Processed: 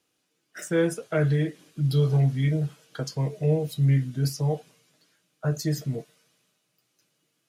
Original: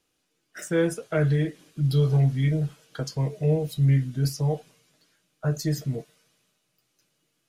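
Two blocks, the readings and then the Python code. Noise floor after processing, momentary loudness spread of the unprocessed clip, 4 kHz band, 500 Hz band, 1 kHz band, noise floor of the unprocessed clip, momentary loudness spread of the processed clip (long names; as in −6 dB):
−75 dBFS, 11 LU, 0.0 dB, 0.0 dB, 0.0 dB, −75 dBFS, 11 LU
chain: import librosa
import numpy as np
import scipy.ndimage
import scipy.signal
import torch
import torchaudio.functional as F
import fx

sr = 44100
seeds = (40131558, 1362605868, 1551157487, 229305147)

y = scipy.signal.sosfilt(scipy.signal.butter(2, 93.0, 'highpass', fs=sr, output='sos'), x)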